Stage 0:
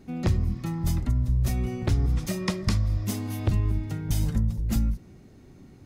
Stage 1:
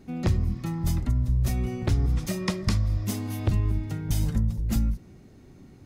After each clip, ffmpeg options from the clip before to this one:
-af anull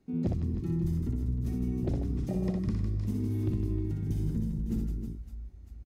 -filter_complex "[0:a]aecho=1:1:60|156|309.6|555.4|948.6:0.631|0.398|0.251|0.158|0.1,afwtdn=0.0708,acrossover=split=180|2400[a][b][c];[a]acompressor=threshold=-32dB:ratio=4[d];[b]acompressor=threshold=-31dB:ratio=4[e];[c]acompressor=threshold=-58dB:ratio=4[f];[d][e][f]amix=inputs=3:normalize=0"

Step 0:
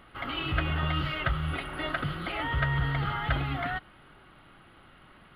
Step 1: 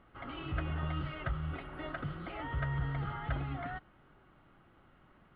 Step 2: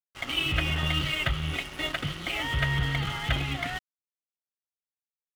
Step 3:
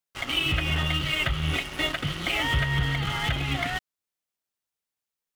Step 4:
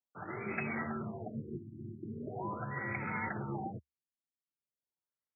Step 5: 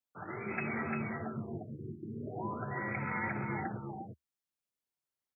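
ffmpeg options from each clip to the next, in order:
-af "lowpass=f=1.1k:p=1,volume=-6dB"
-af "aexciter=amount=7.5:drive=4.4:freq=2.1k,aeval=exprs='sgn(val(0))*max(abs(val(0))-0.00447,0)':c=same,volume=8dB"
-af "alimiter=limit=-21.5dB:level=0:latency=1:release=389,volume=7dB"
-af "afftfilt=real='re*lt(hypot(re,im),0.316)':imag='im*lt(hypot(re,im),0.316)':win_size=1024:overlap=0.75,afreqshift=69,afftfilt=real='re*lt(b*sr/1024,350*pow(2600/350,0.5+0.5*sin(2*PI*0.41*pts/sr)))':imag='im*lt(b*sr/1024,350*pow(2600/350,0.5+0.5*sin(2*PI*0.41*pts/sr)))':win_size=1024:overlap=0.75,volume=-6.5dB"
-af "aecho=1:1:347:0.631"

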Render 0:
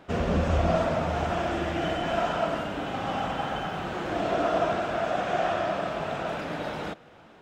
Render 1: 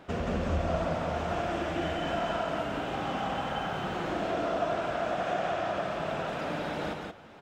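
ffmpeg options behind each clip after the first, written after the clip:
-af "acompressor=threshold=-33dB:ratio=2,aecho=1:1:175:0.668"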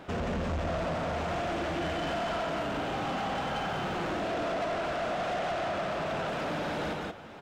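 -af "asoftclip=type=tanh:threshold=-33dB,volume=4.5dB"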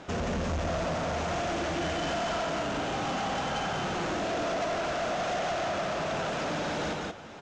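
-af "lowpass=f=6.6k:t=q:w=2.8,volume=1dB"

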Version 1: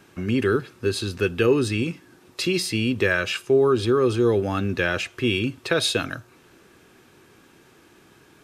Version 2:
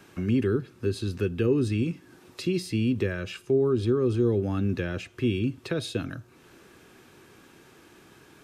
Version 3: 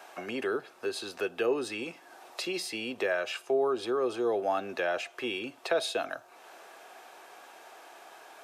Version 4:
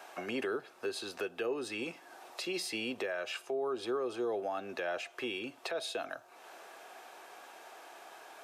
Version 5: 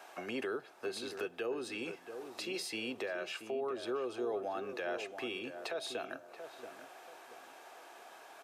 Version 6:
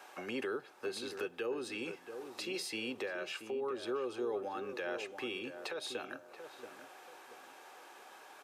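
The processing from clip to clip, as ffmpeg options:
-filter_complex "[0:a]acrossover=split=370[a][b];[b]acompressor=threshold=-46dB:ratio=2[c];[a][c]amix=inputs=2:normalize=0"
-af "highpass=f=700:t=q:w=4.9,volume=2dB"
-af "alimiter=level_in=1.5dB:limit=-24dB:level=0:latency=1:release=334,volume=-1.5dB,volume=-1dB"
-filter_complex "[0:a]asplit=2[a][b];[b]adelay=681,lowpass=f=1.2k:p=1,volume=-8dB,asplit=2[c][d];[d]adelay=681,lowpass=f=1.2k:p=1,volume=0.35,asplit=2[e][f];[f]adelay=681,lowpass=f=1.2k:p=1,volume=0.35,asplit=2[g][h];[h]adelay=681,lowpass=f=1.2k:p=1,volume=0.35[i];[a][c][e][g][i]amix=inputs=5:normalize=0,volume=-2.5dB"
-af "asuperstop=centerf=670:order=4:qfactor=7.1"

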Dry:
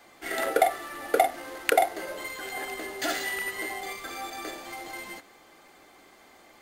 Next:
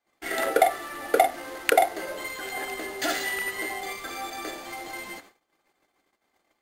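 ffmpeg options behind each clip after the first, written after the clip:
-af "agate=range=-29dB:threshold=-51dB:ratio=16:detection=peak,volume=2dB"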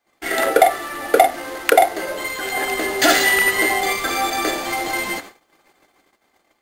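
-af "dynaudnorm=f=200:g=9:m=6dB,aeval=exprs='0.944*sin(PI/2*1.78*val(0)/0.944)':c=same,volume=-1dB"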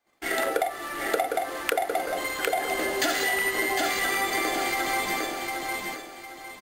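-filter_complex "[0:a]asplit=2[a][b];[b]aecho=0:1:755|1510|2265|3020:0.596|0.185|0.0572|0.0177[c];[a][c]amix=inputs=2:normalize=0,acompressor=threshold=-18dB:ratio=6,volume=-4.5dB"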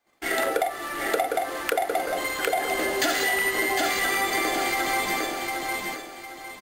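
-af "asoftclip=type=tanh:threshold=-13.5dB,volume=2dB"

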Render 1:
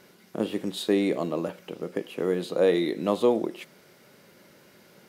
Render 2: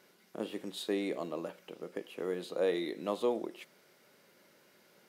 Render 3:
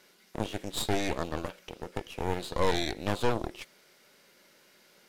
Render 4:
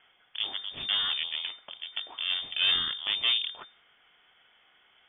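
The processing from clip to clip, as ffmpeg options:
-af "lowshelf=f=180:g=-12,volume=-7.5dB"
-af "equalizer=f=5k:w=0.32:g=6.5,aeval=exprs='0.126*(cos(1*acos(clip(val(0)/0.126,-1,1)))-cos(1*PI/2))+0.0447*(cos(4*acos(clip(val(0)/0.126,-1,1)))-cos(4*PI/2))+0.0141*(cos(8*acos(clip(val(0)/0.126,-1,1)))-cos(8*PI/2))':c=same"
-af "lowpass=f=3.1k:t=q:w=0.5098,lowpass=f=3.1k:t=q:w=0.6013,lowpass=f=3.1k:t=q:w=0.9,lowpass=f=3.1k:t=q:w=2.563,afreqshift=-3600"

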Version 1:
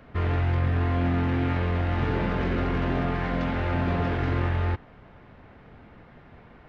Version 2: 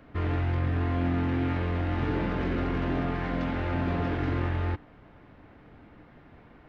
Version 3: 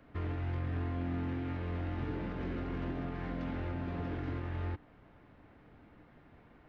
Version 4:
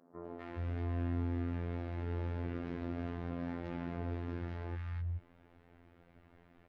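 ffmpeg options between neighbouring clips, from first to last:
-af "equalizer=f=300:t=o:w=0.23:g=8.5,volume=-3.5dB"
-filter_complex "[0:a]alimiter=limit=-21dB:level=0:latency=1:release=173,acrossover=split=480[a][b];[b]acompressor=threshold=-38dB:ratio=6[c];[a][c]amix=inputs=2:normalize=0,volume=-6.5dB"
-filter_complex "[0:a]acrossover=split=170|1100[a][b][c];[c]adelay=250[d];[a]adelay=420[e];[e][b][d]amix=inputs=3:normalize=0,afftfilt=real='hypot(re,im)*cos(PI*b)':imag='0':win_size=2048:overlap=0.75,volume=1dB"

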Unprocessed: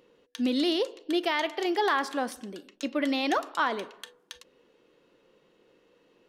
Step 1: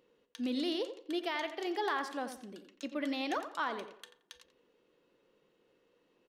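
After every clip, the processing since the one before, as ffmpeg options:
-filter_complex "[0:a]asplit=2[a][b];[b]adelay=87,lowpass=f=3k:p=1,volume=-10dB,asplit=2[c][d];[d]adelay=87,lowpass=f=3k:p=1,volume=0.28,asplit=2[e][f];[f]adelay=87,lowpass=f=3k:p=1,volume=0.28[g];[a][c][e][g]amix=inputs=4:normalize=0,volume=-8.5dB"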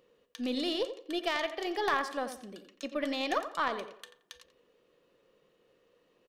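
-af "aecho=1:1:1.7:0.32,aeval=exprs='0.0841*(cos(1*acos(clip(val(0)/0.0841,-1,1)))-cos(1*PI/2))+0.015*(cos(3*acos(clip(val(0)/0.0841,-1,1)))-cos(3*PI/2))+0.00188*(cos(4*acos(clip(val(0)/0.0841,-1,1)))-cos(4*PI/2))+0.00266*(cos(5*acos(clip(val(0)/0.0841,-1,1)))-cos(5*PI/2))':c=same,volume=7dB"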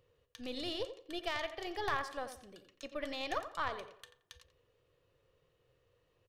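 -af "lowshelf=f=150:t=q:w=3:g=12.5,volume=-5.5dB"

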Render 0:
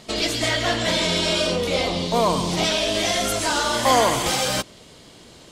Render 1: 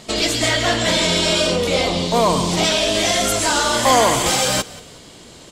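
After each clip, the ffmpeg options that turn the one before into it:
-filter_complex "[0:a]equalizer=f=7.5k:t=o:w=0.28:g=5,acontrast=56,asplit=4[a][b][c][d];[b]adelay=182,afreqshift=-36,volume=-20dB[e];[c]adelay=364,afreqshift=-72,volume=-28.6dB[f];[d]adelay=546,afreqshift=-108,volume=-37.3dB[g];[a][e][f][g]amix=inputs=4:normalize=0,volume=-2dB"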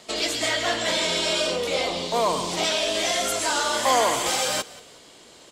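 -filter_complex "[0:a]bass=f=250:g=-12,treble=f=4k:g=-1,acrossover=split=190|1400[a][b][c];[a]acrusher=samples=17:mix=1:aa=0.000001[d];[d][b][c]amix=inputs=3:normalize=0,volume=-5.5dB"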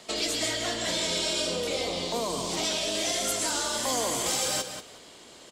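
-filter_complex "[0:a]acrossover=split=390|4000[a][b][c];[b]acompressor=threshold=-32dB:ratio=6[d];[a][d][c]amix=inputs=3:normalize=0,asplit=2[e][f];[f]adelay=186.6,volume=-8dB,highshelf=f=4k:g=-4.2[g];[e][g]amix=inputs=2:normalize=0,volume=-1dB"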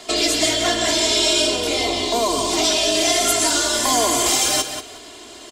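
-af "aecho=1:1:2.9:0.8,volume=8dB"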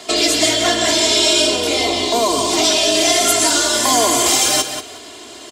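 -af "highpass=74,volume=3.5dB"

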